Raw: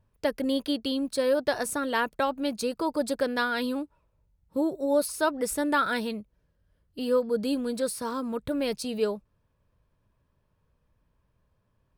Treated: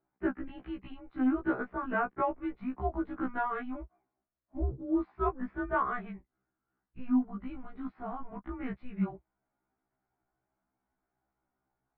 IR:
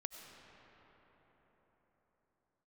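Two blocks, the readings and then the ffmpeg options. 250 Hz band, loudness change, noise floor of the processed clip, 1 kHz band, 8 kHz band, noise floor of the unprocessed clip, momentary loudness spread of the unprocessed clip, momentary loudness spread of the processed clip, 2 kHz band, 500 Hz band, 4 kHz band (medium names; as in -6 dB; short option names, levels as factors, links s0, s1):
-3.5 dB, -6.0 dB, under -85 dBFS, -3.5 dB, under -40 dB, -72 dBFS, 7 LU, 14 LU, -7.5 dB, -11.5 dB, under -25 dB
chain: -af "asubboost=boost=6:cutoff=190,highpass=f=360:t=q:w=0.5412,highpass=f=360:t=q:w=1.307,lowpass=f=2200:t=q:w=0.5176,lowpass=f=2200:t=q:w=0.7071,lowpass=f=2200:t=q:w=1.932,afreqshift=-250,afftfilt=real='re*1.73*eq(mod(b,3),0)':imag='im*1.73*eq(mod(b,3),0)':win_size=2048:overlap=0.75"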